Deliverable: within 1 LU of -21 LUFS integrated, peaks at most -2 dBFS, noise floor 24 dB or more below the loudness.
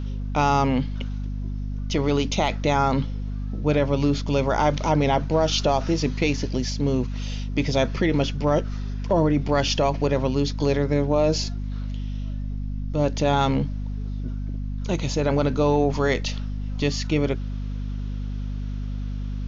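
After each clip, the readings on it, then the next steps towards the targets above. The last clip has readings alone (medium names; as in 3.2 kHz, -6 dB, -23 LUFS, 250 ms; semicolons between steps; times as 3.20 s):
hum 50 Hz; highest harmonic 250 Hz; hum level -26 dBFS; loudness -24.5 LUFS; peak level -9.0 dBFS; loudness target -21.0 LUFS
-> hum notches 50/100/150/200/250 Hz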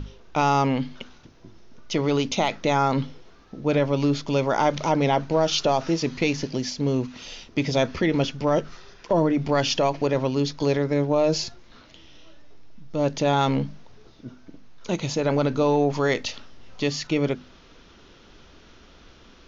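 hum not found; loudness -24.0 LUFS; peak level -9.5 dBFS; loudness target -21.0 LUFS
-> trim +3 dB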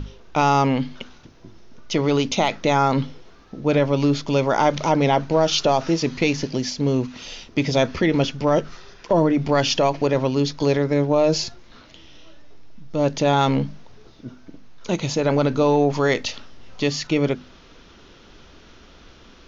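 loudness -21.0 LUFS; peak level -6.5 dBFS; noise floor -48 dBFS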